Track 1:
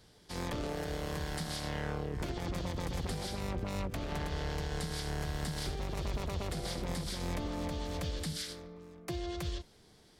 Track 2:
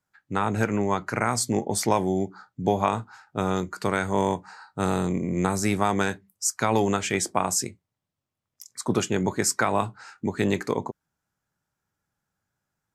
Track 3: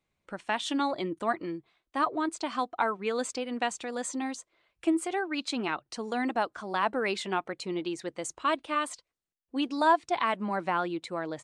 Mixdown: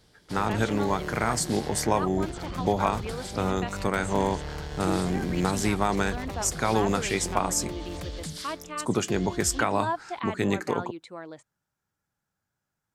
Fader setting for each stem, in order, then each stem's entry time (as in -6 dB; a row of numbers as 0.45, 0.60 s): +0.5, -2.0, -6.5 dB; 0.00, 0.00, 0.00 s